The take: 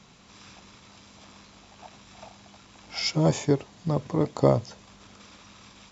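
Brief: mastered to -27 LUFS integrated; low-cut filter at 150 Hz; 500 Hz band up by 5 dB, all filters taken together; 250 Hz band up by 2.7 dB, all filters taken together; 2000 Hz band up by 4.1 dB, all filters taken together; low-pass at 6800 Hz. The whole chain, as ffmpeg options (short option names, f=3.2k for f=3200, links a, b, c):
-af "highpass=150,lowpass=6.8k,equalizer=f=250:t=o:g=3,equalizer=f=500:t=o:g=5,equalizer=f=2k:t=o:g=4.5,volume=-4dB"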